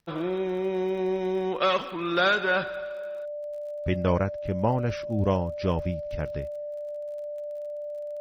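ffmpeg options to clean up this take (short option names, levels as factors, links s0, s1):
-af "adeclick=t=4,bandreject=f=590:w=30"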